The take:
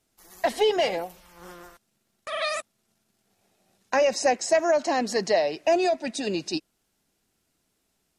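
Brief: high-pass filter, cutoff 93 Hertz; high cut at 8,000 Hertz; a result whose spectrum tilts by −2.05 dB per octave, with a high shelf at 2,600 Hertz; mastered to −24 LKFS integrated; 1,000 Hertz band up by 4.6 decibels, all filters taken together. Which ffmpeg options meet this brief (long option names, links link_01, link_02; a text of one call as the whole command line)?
ffmpeg -i in.wav -af "highpass=93,lowpass=8000,equalizer=frequency=1000:width_type=o:gain=8,highshelf=frequency=2600:gain=-6,volume=-1dB" out.wav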